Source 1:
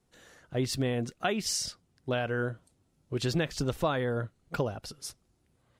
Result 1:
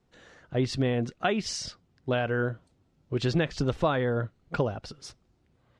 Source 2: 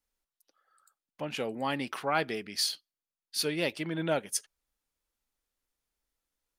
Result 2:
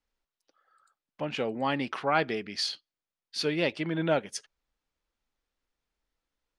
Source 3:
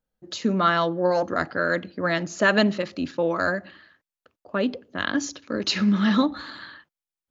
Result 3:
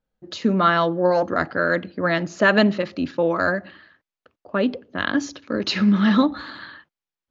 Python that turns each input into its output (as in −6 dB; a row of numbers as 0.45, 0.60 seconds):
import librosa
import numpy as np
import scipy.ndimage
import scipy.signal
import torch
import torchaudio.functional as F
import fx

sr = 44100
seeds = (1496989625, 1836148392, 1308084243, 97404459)

y = fx.air_absorb(x, sr, metres=110.0)
y = F.gain(torch.from_numpy(y), 3.5).numpy()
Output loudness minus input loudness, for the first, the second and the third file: +3.0, +2.0, +3.0 LU